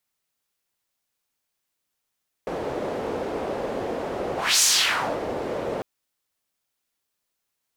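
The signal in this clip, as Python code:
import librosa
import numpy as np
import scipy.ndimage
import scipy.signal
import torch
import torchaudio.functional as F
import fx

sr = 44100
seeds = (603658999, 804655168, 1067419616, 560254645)

y = fx.whoosh(sr, seeds[0], length_s=3.35, peak_s=2.14, rise_s=0.27, fall_s=0.61, ends_hz=490.0, peak_hz=6800.0, q=1.9, swell_db=11)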